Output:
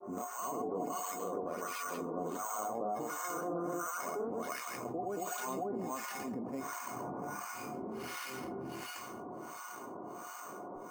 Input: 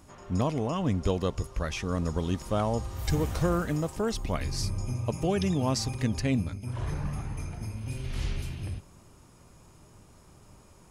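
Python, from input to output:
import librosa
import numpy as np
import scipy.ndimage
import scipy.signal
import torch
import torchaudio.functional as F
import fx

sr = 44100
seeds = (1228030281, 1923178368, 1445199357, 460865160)

p1 = scipy.signal.sosfilt(scipy.signal.butter(4, 300.0, 'highpass', fs=sr, output='sos'), x)
p2 = fx.peak_eq(p1, sr, hz=1100.0, db=13.0, octaves=0.41)
p3 = fx.granulator(p2, sr, seeds[0], grain_ms=255.0, per_s=27.0, spray_ms=356.0, spread_st=0)
p4 = scipy.signal.sosfilt(scipy.signal.butter(2, 4300.0, 'lowpass', fs=sr, output='sos'), p3)
p5 = fx.tilt_eq(p4, sr, slope=-4.0)
p6 = fx.comb_fb(p5, sr, f0_hz=720.0, decay_s=0.19, harmonics='all', damping=0.0, mix_pct=90)
p7 = np.repeat(scipy.signal.resample_poly(p6, 1, 6), 6)[:len(p6)]
p8 = p7 + fx.echo_feedback(p7, sr, ms=312, feedback_pct=59, wet_db=-18.0, dry=0)
p9 = fx.harmonic_tremolo(p8, sr, hz=1.4, depth_pct=100, crossover_hz=1000.0)
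p10 = fx.env_flatten(p9, sr, amount_pct=70)
y = p10 * 10.0 ** (12.0 / 20.0)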